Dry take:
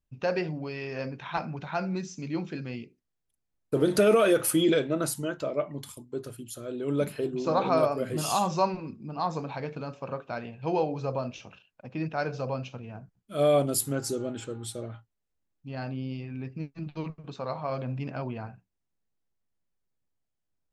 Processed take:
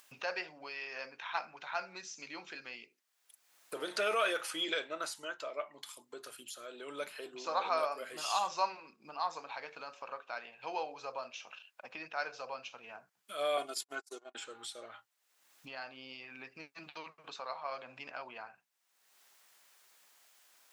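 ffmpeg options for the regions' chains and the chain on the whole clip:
ffmpeg -i in.wav -filter_complex "[0:a]asettb=1/sr,asplit=3[link_01][link_02][link_03];[link_01]atrim=end=13.574[link_04];[link_02]atrim=start=13.57:end=14.35,asetpts=PTS-STARTPTS,afade=type=in:duration=0.004:curve=qsin,afade=type=out:start_time=0.776:duration=0.004:curve=qsin,agate=range=-48dB:threshold=-30dB:ratio=16:release=100:detection=peak,aecho=1:1:2.8:0.71,atrim=end_sample=34398[link_05];[link_03]atrim=start=14.346[link_06];[link_04][link_05]acrossfade=duration=0.004:curve1=hsin:curve2=qsin[link_07];[link_07][link_06]acrossfade=duration=0.004:curve1=qsin:curve2=hsin,acrossover=split=6500[link_08][link_09];[link_09]acompressor=threshold=-54dB:ratio=4:attack=1:release=60[link_10];[link_08][link_10]amix=inputs=2:normalize=0,highpass=1000,acompressor=mode=upward:threshold=-39dB:ratio=2.5,volume=-1.5dB" out.wav

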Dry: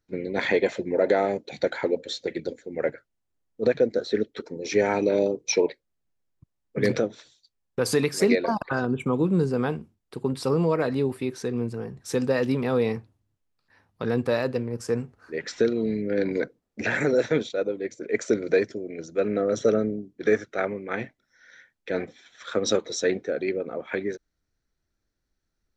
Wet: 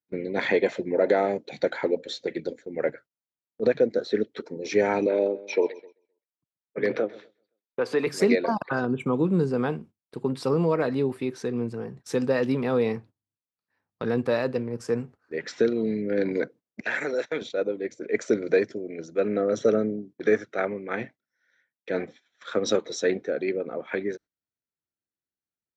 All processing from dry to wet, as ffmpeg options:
ffmpeg -i in.wav -filter_complex "[0:a]asettb=1/sr,asplit=3[link_01][link_02][link_03];[link_01]atrim=end=5.064[link_04];[link_02]atrim=start=5.06:end=8.07,asetpts=PTS-STARTPTS,afade=type=in:duration=0.004:curve=qsin,afade=type=out:start_time=3.006:duration=0.004:curve=qsin,highpass=53,acrossover=split=280 3600:gain=0.224 1 0.126[link_05][link_06][link_07];[link_05][link_06][link_07]amix=inputs=3:normalize=0,aecho=1:1:130|260|390|520:0.1|0.048|0.023|0.0111,atrim=end_sample=132741[link_08];[link_03]atrim=start=8.066[link_09];[link_04][link_08]acrossfade=duration=0.004:curve1=hsin:curve2=qsin[link_10];[link_10][link_09]acrossfade=duration=0.004:curve1=qsin:curve2=hsin,asettb=1/sr,asplit=3[link_11][link_12][link_13];[link_11]atrim=end=16.804[link_14];[link_12]atrim=start=16.8:end=17.42,asetpts=PTS-STARTPTS,afade=type=in:duration=0.004:curve=qsin,afade=type=out:start_time=0.616:duration=0.004:curve=qsin,agate=range=-19dB:threshold=-29dB:ratio=16:release=100:detection=peak,highpass=frequency=800:poles=1[link_15];[link_13]atrim=start=17.416[link_16];[link_14][link_15]acrossfade=duration=0.004:curve1=hsin:curve2=qsin[link_17];[link_17][link_16]acrossfade=duration=0.004:curve1=qsin:curve2=hsin,highpass=120,agate=range=-16dB:threshold=-45dB:ratio=16:detection=peak,highshelf=frequency=6500:gain=-8.5" out.wav

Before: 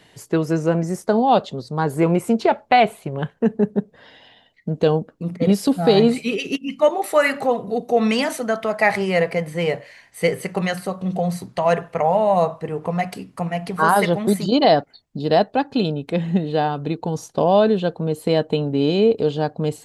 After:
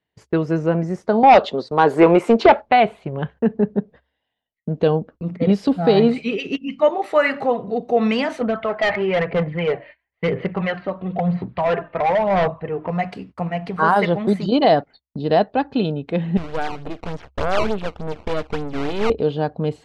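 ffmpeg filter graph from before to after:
ffmpeg -i in.wav -filter_complex "[0:a]asettb=1/sr,asplit=3[link_01][link_02][link_03];[link_01]atrim=end=1.234[link_04];[link_02]atrim=start=1.23:end=2.62,asetpts=PTS-STARTPTS,afade=type=in:duration=0.004:curve=qsin,afade=type=out:start_time=1.386:duration=0.004:curve=qsin,highpass=340,agate=range=-33dB:threshold=-39dB:ratio=3:release=100:detection=peak,aeval=exprs='0.596*sin(PI/2*2*val(0)/0.596)':channel_layout=same[link_05];[link_03]atrim=start=2.616[link_06];[link_04][link_05]acrossfade=duration=0.004:curve1=hsin:curve2=qsin[link_07];[link_07][link_06]acrossfade=duration=0.004:curve1=qsin:curve2=hsin,asettb=1/sr,asplit=3[link_08][link_09][link_10];[link_08]atrim=end=8.414[link_11];[link_09]atrim=start=8.41:end=12.9,asetpts=PTS-STARTPTS,afade=type=in:duration=0.004:curve=qsin,afade=type=out:start_time=4.486:duration=0.004:curve=qsin,lowpass=frequency=3300:width=0.5412,lowpass=frequency=3300:width=1.3066,aphaser=in_gain=1:out_gain=1:delay=3.3:decay=0.5:speed=1:type=sinusoidal,asoftclip=type=hard:threshold=-14.5dB[link_12];[link_10]atrim=start=12.896[link_13];[link_11][link_12]acrossfade=duration=0.004:curve1=hsin:curve2=qsin[link_14];[link_14][link_13]acrossfade=duration=0.004:curve1=qsin:curve2=hsin,asettb=1/sr,asplit=3[link_15][link_16][link_17];[link_15]atrim=end=16.374[link_18];[link_16]atrim=start=16.37:end=19.1,asetpts=PTS-STARTPTS,afade=type=in:duration=0.004:curve=qsin,afade=type=out:start_time=2.726:duration=0.004:curve=qsin,equalizer=frequency=840:width=4.4:gain=4,acrusher=samples=15:mix=1:aa=0.000001:lfo=1:lforange=24:lforate=3.4,aeval=exprs='max(val(0),0)':channel_layout=same[link_19];[link_17]atrim=start=19.096[link_20];[link_18][link_19]acrossfade=duration=0.004:curve1=hsin:curve2=qsin[link_21];[link_21][link_20]acrossfade=duration=0.004:curve1=qsin:curve2=hsin,agate=range=-28dB:threshold=-39dB:ratio=16:detection=peak,lowpass=3400,equalizer=frequency=66:width_type=o:width=0.24:gain=12.5" out.wav

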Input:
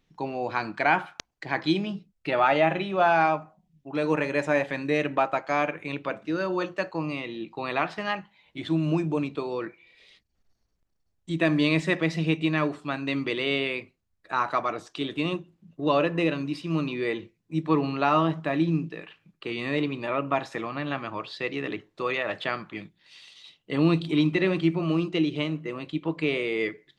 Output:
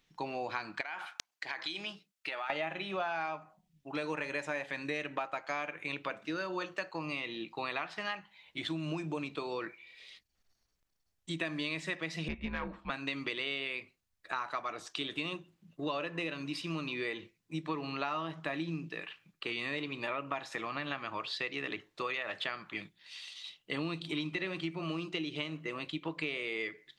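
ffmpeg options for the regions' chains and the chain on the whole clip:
ffmpeg -i in.wav -filter_complex "[0:a]asettb=1/sr,asplit=3[link_01][link_02][link_03];[link_01]atrim=end=0.814[link_04];[link_02]atrim=start=0.81:end=2.5,asetpts=PTS-STARTPTS,afade=type=in:duration=0.004:curve=qsin,afade=type=out:start_time=1.686:duration=0.004:curve=qsin,highpass=frequency=820:poles=1,acompressor=threshold=-32dB:ratio=10:attack=3.2:release=140:knee=1:detection=peak[link_05];[link_03]atrim=start=2.496[link_06];[link_04][link_05]acrossfade=duration=0.004:curve1=hsin:curve2=qsin[link_07];[link_07][link_06]acrossfade=duration=0.004:curve1=qsin:curve2=hsin,asettb=1/sr,asplit=3[link_08][link_09][link_10];[link_08]atrim=end=12.284[link_11];[link_09]atrim=start=12.28:end=12.9,asetpts=PTS-STARTPTS,afade=type=in:duration=0.004:curve=qsin,afade=type=out:start_time=0.616:duration=0.004:curve=qsin,lowpass=1900,afreqshift=-99,aeval=exprs='(tanh(7.08*val(0)+0.55)-tanh(0.55))/7.08':channel_layout=same[link_12];[link_10]atrim=start=12.896[link_13];[link_11][link_12]acrossfade=duration=0.004:curve1=hsin:curve2=qsin[link_14];[link_14][link_13]acrossfade=duration=0.004:curve1=qsin:curve2=hsin,tiltshelf=frequency=870:gain=-5.5,acompressor=threshold=-31dB:ratio=6,volume=-2dB" out.wav

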